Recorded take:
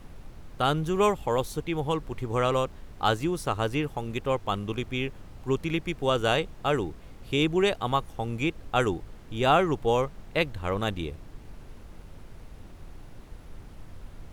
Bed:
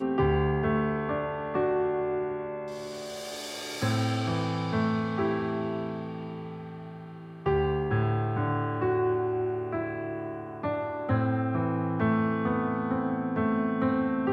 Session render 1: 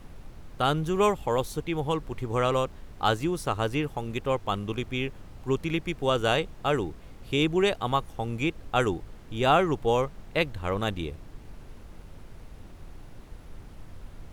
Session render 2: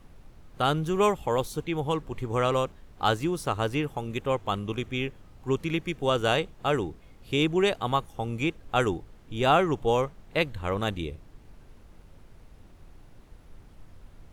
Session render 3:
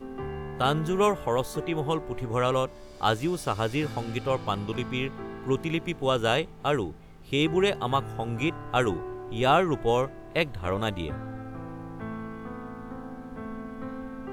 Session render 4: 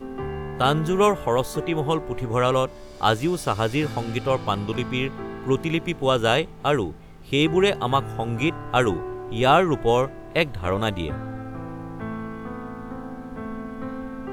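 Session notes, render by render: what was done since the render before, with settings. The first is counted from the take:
no audible change
noise print and reduce 6 dB
add bed -11 dB
trim +4.5 dB

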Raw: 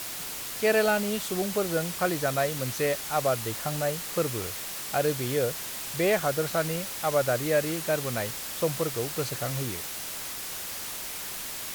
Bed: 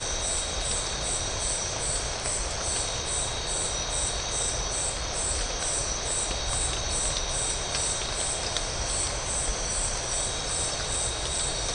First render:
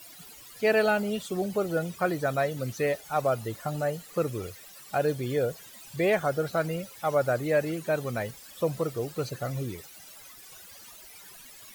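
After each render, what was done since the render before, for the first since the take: noise reduction 17 dB, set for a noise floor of -36 dBFS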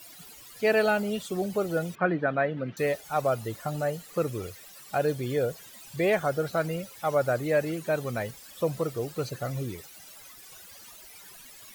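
1.95–2.77 s: cabinet simulation 160–2900 Hz, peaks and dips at 170 Hz +7 dB, 290 Hz +5 dB, 1.6 kHz +5 dB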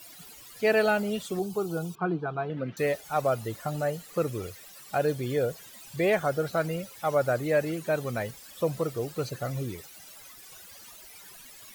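1.39–2.50 s: static phaser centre 380 Hz, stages 8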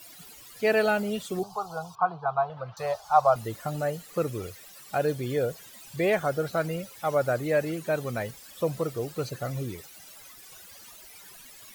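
1.43–3.36 s: FFT filter 110 Hz 0 dB, 160 Hz -8 dB, 290 Hz -27 dB, 510 Hz -4 dB, 750 Hz +10 dB, 1.1 kHz +11 dB, 2 kHz -11 dB, 4.9 kHz +3 dB, 8 kHz -6 dB, 16 kHz -10 dB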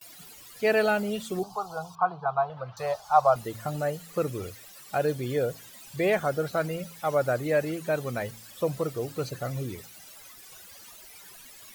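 gate with hold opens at -39 dBFS; de-hum 55.71 Hz, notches 5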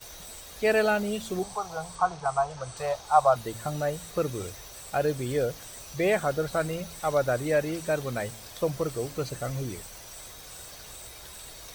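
add bed -17.5 dB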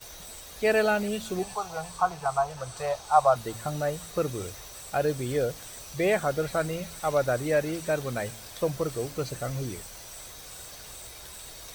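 feedback echo behind a high-pass 365 ms, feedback 77%, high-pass 3.6 kHz, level -10.5 dB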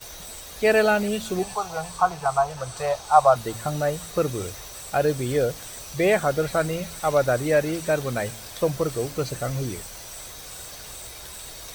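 trim +4.5 dB

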